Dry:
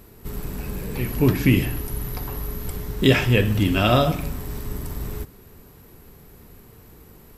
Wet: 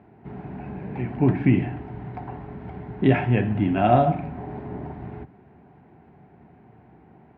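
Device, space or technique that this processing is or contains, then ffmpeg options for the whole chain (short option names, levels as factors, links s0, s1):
bass cabinet: -filter_complex "[0:a]asettb=1/sr,asplit=3[s0][s1][s2];[s0]atrim=end=4.374[s3];[s1]atrim=start=4.37:end=4.92,asetpts=PTS-STARTPTS,afade=t=in:d=0.004:c=qsin,afade=t=out:st=0.546:d=0.004:c=qsin,equalizer=f=510:w=0.75:g=6[s4];[s2]atrim=start=4.916[s5];[s3][s4]acrossfade=d=0.004:c1=hsin:c2=qsin[s6];[s6][s5]acrossfade=d=0.004:c1=qsin:c2=hsin,highpass=f=86:w=0.5412,highpass=f=86:w=1.3066,equalizer=f=93:t=q:w=4:g=-8,equalizer=f=490:t=q:w=4:g=-10,equalizer=f=750:t=q:w=4:g=10,equalizer=f=1200:t=q:w=4:g=-10,equalizer=f=1800:t=q:w=4:g=-3,lowpass=f=2000:w=0.5412,lowpass=f=2000:w=1.3066"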